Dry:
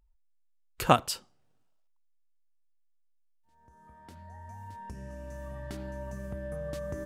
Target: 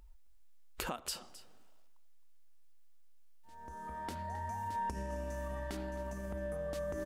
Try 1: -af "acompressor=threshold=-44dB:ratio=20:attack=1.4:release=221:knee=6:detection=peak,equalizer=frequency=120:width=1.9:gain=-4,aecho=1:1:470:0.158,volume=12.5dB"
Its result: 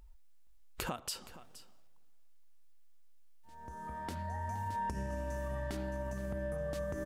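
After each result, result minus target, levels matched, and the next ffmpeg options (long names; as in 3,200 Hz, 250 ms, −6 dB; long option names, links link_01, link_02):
echo 205 ms late; 125 Hz band +2.5 dB
-af "acompressor=threshold=-44dB:ratio=20:attack=1.4:release=221:knee=6:detection=peak,equalizer=frequency=120:width=1.9:gain=-4,aecho=1:1:265:0.158,volume=12.5dB"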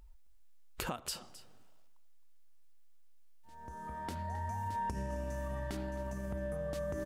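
125 Hz band +2.5 dB
-af "acompressor=threshold=-44dB:ratio=20:attack=1.4:release=221:knee=6:detection=peak,equalizer=frequency=120:width=1.9:gain=-14.5,aecho=1:1:265:0.158,volume=12.5dB"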